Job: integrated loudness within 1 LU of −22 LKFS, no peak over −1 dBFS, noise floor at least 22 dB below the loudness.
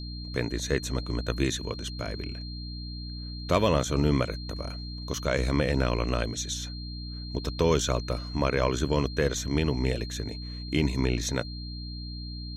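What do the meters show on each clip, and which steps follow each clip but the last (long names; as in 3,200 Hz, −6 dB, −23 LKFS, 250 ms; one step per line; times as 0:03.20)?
mains hum 60 Hz; hum harmonics up to 300 Hz; level of the hum −34 dBFS; interfering tone 4,200 Hz; level of the tone −42 dBFS; integrated loudness −29.5 LKFS; sample peak −11.0 dBFS; target loudness −22.0 LKFS
→ hum removal 60 Hz, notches 5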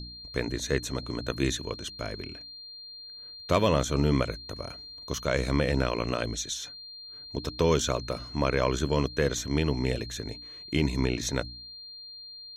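mains hum none found; interfering tone 4,200 Hz; level of the tone −42 dBFS
→ notch filter 4,200 Hz, Q 30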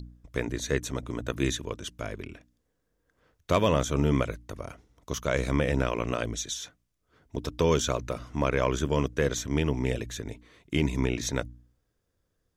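interfering tone none found; integrated loudness −29.0 LKFS; sample peak −11.5 dBFS; target loudness −22.0 LKFS
→ level +7 dB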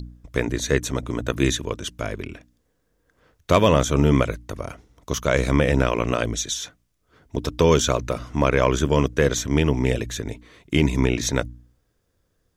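integrated loudness −22.0 LKFS; sample peak −4.5 dBFS; background noise floor −70 dBFS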